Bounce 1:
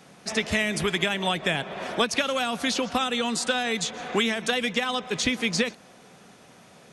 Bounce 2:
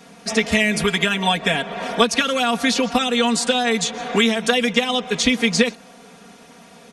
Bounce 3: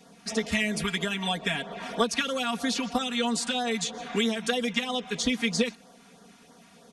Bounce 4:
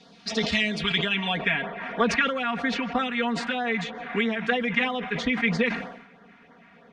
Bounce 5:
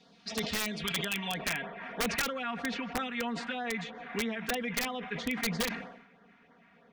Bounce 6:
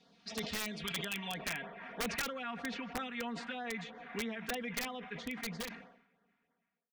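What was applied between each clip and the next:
comb 4.3 ms, depth 92%; trim +3.5 dB
LFO notch sine 3.1 Hz 450–2600 Hz; trim -8 dB
low-pass sweep 4.2 kHz -> 2 kHz, 0.56–1.66 s; decay stretcher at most 70 dB/s
integer overflow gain 14.5 dB; trim -8 dB
fade out at the end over 2.14 s; trim -5.5 dB

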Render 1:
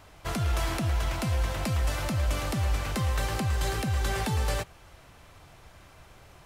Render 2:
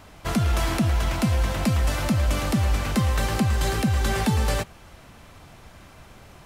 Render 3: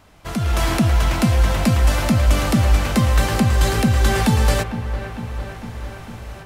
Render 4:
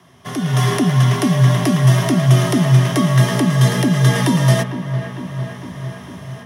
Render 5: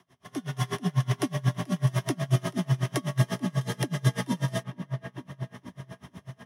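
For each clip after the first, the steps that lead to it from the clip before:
peaking EQ 220 Hz +7.5 dB 0.66 oct; trim +4.5 dB
level rider gain up to 11.5 dB; feedback echo behind a low-pass 452 ms, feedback 68%, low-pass 2.5 kHz, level -11.5 dB; trim -4 dB
rippled EQ curve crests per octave 1.2, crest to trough 9 dB; frequency shift +74 Hz
logarithmic tremolo 8.1 Hz, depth 28 dB; trim -7.5 dB

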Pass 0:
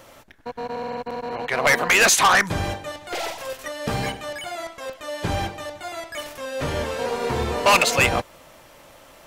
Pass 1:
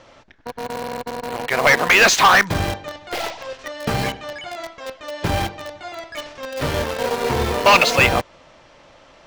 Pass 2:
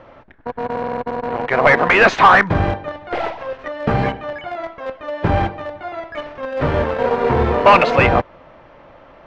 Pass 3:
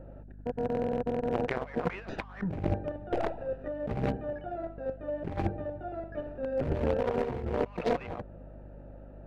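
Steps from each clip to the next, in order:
low-pass 5.9 kHz 24 dB/octave; in parallel at -5.5 dB: bit crusher 4-bit
low-pass 1.7 kHz 12 dB/octave; in parallel at -9.5 dB: saturation -16 dBFS, distortion -10 dB; on the sum: trim +3 dB
local Wiener filter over 41 samples; compressor with a negative ratio -22 dBFS, ratio -0.5; hum 50 Hz, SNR 15 dB; trim -8.5 dB

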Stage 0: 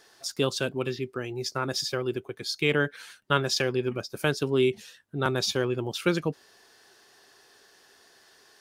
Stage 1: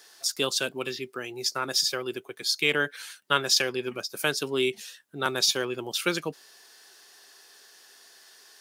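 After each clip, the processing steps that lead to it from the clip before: high-pass 140 Hz 12 dB/octave; tilt EQ +2.5 dB/octave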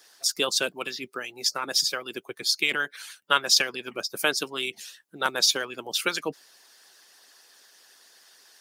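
harmonic-percussive split harmonic -15 dB; trim +3 dB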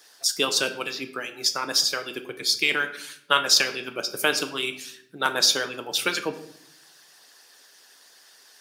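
simulated room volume 140 m³, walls mixed, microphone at 0.39 m; trim +1.5 dB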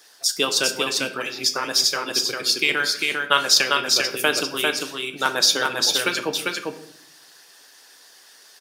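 delay 398 ms -3 dB; trim +2 dB

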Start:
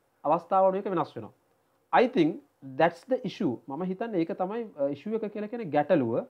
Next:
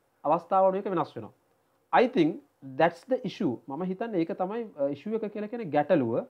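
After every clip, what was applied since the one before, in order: no audible change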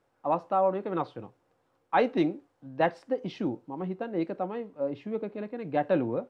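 distance through air 54 m; trim -2 dB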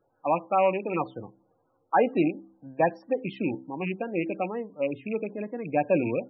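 rattle on loud lows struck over -36 dBFS, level -25 dBFS; loudest bins only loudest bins 32; de-hum 65.27 Hz, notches 5; trim +2.5 dB

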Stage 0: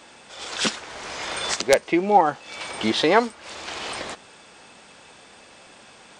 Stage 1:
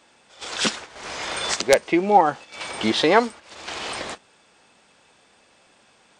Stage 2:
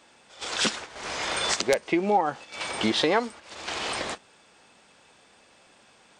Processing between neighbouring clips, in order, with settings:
gate -36 dBFS, range -10 dB; trim +1 dB
compression 3:1, threshold -21 dBFS, peak gain reduction 9 dB

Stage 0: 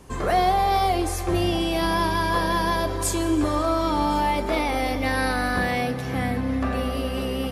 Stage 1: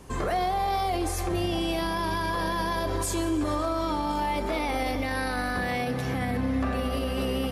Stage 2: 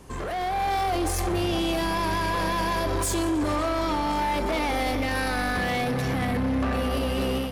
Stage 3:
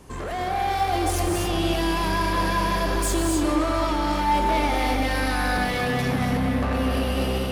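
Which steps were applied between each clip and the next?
peak limiter -19.5 dBFS, peak gain reduction 9.5 dB
saturation -28 dBFS, distortion -12 dB; level rider gain up to 6.5 dB
reverberation, pre-delay 3 ms, DRR 2 dB

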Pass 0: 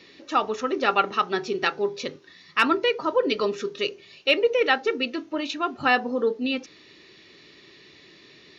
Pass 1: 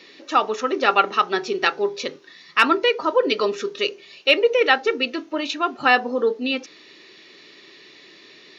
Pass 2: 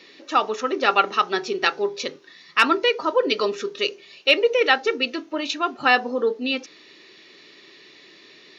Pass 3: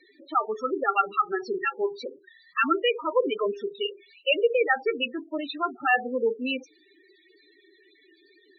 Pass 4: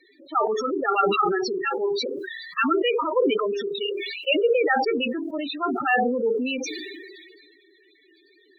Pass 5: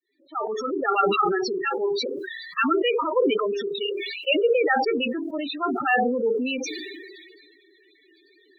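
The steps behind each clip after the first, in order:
Bessel high-pass 290 Hz, order 2; trim +4.5 dB
dynamic bell 6 kHz, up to +4 dB, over -34 dBFS, Q 0.78; trim -1.5 dB
loudest bins only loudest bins 8; trim -3 dB
decay stretcher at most 29 dB/s
fade-in on the opening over 0.83 s

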